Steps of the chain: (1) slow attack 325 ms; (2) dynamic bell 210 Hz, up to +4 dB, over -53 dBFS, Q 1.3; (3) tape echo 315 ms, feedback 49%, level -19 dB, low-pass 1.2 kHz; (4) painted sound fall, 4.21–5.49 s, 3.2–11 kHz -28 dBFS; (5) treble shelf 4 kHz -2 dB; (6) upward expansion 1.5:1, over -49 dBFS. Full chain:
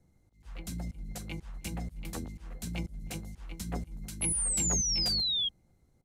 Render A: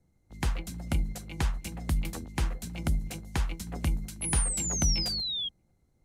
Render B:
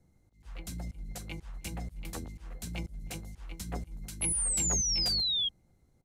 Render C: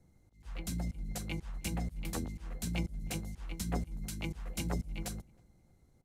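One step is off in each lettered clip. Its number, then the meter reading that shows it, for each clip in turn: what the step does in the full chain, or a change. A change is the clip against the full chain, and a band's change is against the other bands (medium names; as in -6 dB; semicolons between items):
1, crest factor change -2.0 dB; 2, 250 Hz band -3.0 dB; 4, 4 kHz band -16.5 dB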